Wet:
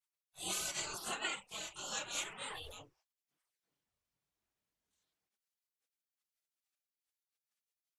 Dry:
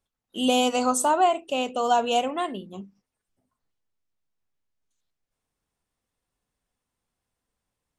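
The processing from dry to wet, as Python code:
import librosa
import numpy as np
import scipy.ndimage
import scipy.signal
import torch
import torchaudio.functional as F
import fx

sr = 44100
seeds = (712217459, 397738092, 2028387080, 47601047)

y = fx.spec_gate(x, sr, threshold_db=-25, keep='weak')
y = fx.chorus_voices(y, sr, voices=4, hz=1.1, base_ms=25, depth_ms=3.6, mix_pct=65)
y = fx.sustainer(y, sr, db_per_s=26.0, at=(2.4, 2.82))
y = F.gain(torch.from_numpy(y), 2.5).numpy()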